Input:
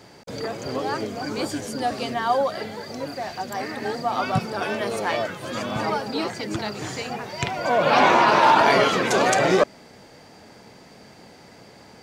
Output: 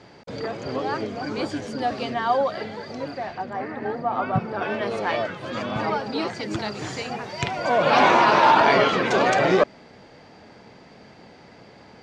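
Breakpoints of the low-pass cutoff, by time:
3.06 s 4.3 kHz
3.59 s 1.7 kHz
4.37 s 1.7 kHz
4.92 s 4 kHz
5.95 s 4 kHz
6.58 s 7.1 kHz
8.18 s 7.1 kHz
8.84 s 4.2 kHz

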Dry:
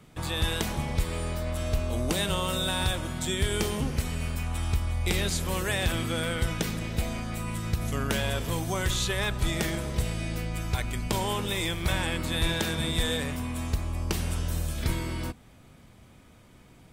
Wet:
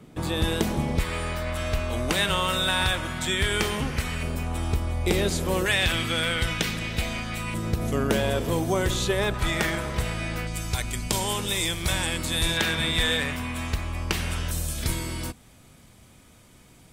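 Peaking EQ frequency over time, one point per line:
peaking EQ +9 dB 2.2 oct
300 Hz
from 0.99 s 1.8 kHz
from 4.23 s 410 Hz
from 5.66 s 2.7 kHz
from 7.54 s 400 Hz
from 9.34 s 1.4 kHz
from 10.47 s 7.9 kHz
from 12.57 s 2.1 kHz
from 14.51 s 9.4 kHz

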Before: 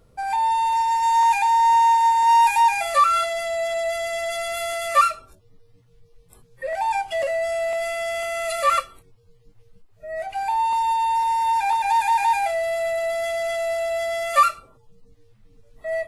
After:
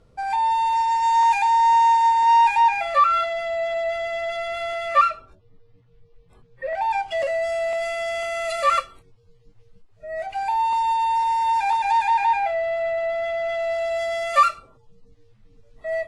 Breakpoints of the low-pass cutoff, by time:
1.97 s 6.6 kHz
2.80 s 3.2 kHz
6.70 s 3.2 kHz
7.23 s 7.1 kHz
11.76 s 7.1 kHz
12.45 s 2.7 kHz
13.43 s 2.7 kHz
14.02 s 6.8 kHz

